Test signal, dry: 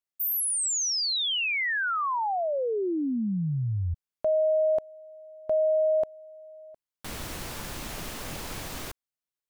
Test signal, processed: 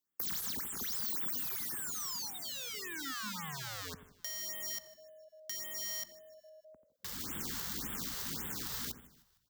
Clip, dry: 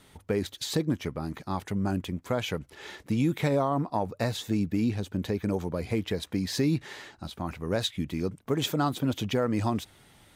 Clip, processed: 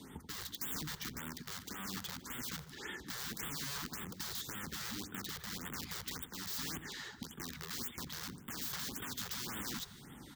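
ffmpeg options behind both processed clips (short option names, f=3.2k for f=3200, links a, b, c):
-filter_complex "[0:a]aeval=exprs='(mod(35.5*val(0)+1,2)-1)/35.5':c=same,acrossover=split=190|1500[a][b][c];[a]acompressor=threshold=-51dB:ratio=4[d];[b]acompressor=threshold=-56dB:ratio=4[e];[c]acompressor=threshold=-40dB:ratio=4[f];[d][e][f]amix=inputs=3:normalize=0,highpass=60,asplit=2[g][h];[h]adelay=86,lowpass=f=910:p=1,volume=-9dB,asplit=2[i][j];[j]adelay=86,lowpass=f=910:p=1,volume=0.47,asplit=2[k][l];[l]adelay=86,lowpass=f=910:p=1,volume=0.47,asplit=2[m][n];[n]adelay=86,lowpass=f=910:p=1,volume=0.47,asplit=2[o][p];[p]adelay=86,lowpass=f=910:p=1,volume=0.47[q];[i][k][m][o][q]amix=inputs=5:normalize=0[r];[g][r]amix=inputs=2:normalize=0,alimiter=level_in=6.5dB:limit=-24dB:level=0:latency=1:release=361,volume=-6.5dB,equalizer=f=100:t=o:w=0.67:g=-9,equalizer=f=250:t=o:w=0.67:g=6,equalizer=f=630:t=o:w=0.67:g=-11,equalizer=f=2.5k:t=o:w=0.67:g=-11,equalizer=f=10k:t=o:w=0.67:g=-9,asplit=2[s][t];[t]asplit=4[u][v][w][x];[u]adelay=153,afreqshift=-43,volume=-20dB[y];[v]adelay=306,afreqshift=-86,volume=-26.6dB[z];[w]adelay=459,afreqshift=-129,volume=-33.1dB[aa];[x]adelay=612,afreqshift=-172,volume=-39.7dB[ab];[y][z][aa][ab]amix=inputs=4:normalize=0[ac];[s][ac]amix=inputs=2:normalize=0,afftfilt=real='re*(1-between(b*sr/1024,240*pow(5300/240,0.5+0.5*sin(2*PI*1.8*pts/sr))/1.41,240*pow(5300/240,0.5+0.5*sin(2*PI*1.8*pts/sr))*1.41))':imag='im*(1-between(b*sr/1024,240*pow(5300/240,0.5+0.5*sin(2*PI*1.8*pts/sr))/1.41,240*pow(5300/240,0.5+0.5*sin(2*PI*1.8*pts/sr))*1.41))':win_size=1024:overlap=0.75,volume=7dB"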